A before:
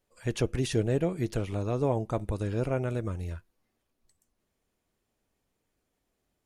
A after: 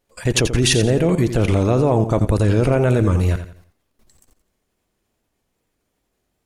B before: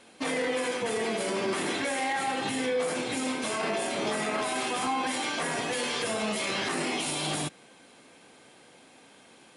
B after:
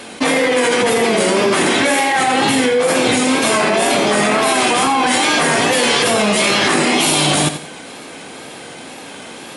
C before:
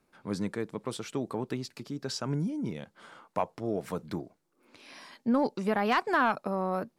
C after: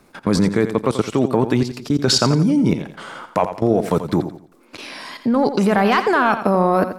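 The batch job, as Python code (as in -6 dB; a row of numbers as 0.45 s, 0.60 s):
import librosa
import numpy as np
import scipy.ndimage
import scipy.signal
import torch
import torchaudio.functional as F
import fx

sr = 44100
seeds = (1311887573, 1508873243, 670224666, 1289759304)

p1 = fx.level_steps(x, sr, step_db=19)
p2 = fx.wow_flutter(p1, sr, seeds[0], rate_hz=2.1, depth_cents=62.0)
p3 = p2 + fx.echo_feedback(p2, sr, ms=86, feedback_pct=33, wet_db=-10.5, dry=0)
y = p3 * 10.0 ** (-2 / 20.0) / np.max(np.abs(p3))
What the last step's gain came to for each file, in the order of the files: +22.5 dB, +23.0 dB, +22.5 dB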